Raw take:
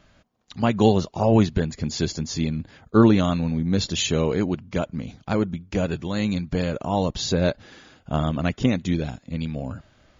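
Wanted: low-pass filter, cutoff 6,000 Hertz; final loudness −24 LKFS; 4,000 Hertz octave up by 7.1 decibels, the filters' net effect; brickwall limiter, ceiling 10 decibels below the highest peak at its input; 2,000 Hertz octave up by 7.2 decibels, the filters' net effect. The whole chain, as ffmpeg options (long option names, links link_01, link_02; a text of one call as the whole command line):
ffmpeg -i in.wav -af "lowpass=6000,equalizer=frequency=2000:width_type=o:gain=7.5,equalizer=frequency=4000:width_type=o:gain=7,volume=1dB,alimiter=limit=-12dB:level=0:latency=1" out.wav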